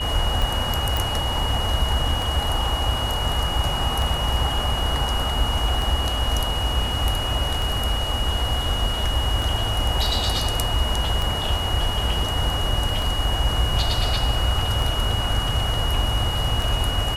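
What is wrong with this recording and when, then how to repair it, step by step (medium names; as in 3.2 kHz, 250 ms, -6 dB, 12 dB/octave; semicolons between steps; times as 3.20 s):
tick 33 1/3 rpm
whine 2.9 kHz -27 dBFS
0.97 s: pop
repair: de-click; band-stop 2.9 kHz, Q 30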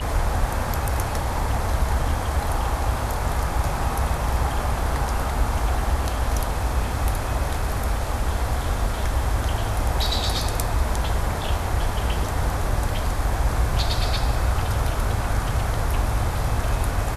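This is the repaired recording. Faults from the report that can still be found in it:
nothing left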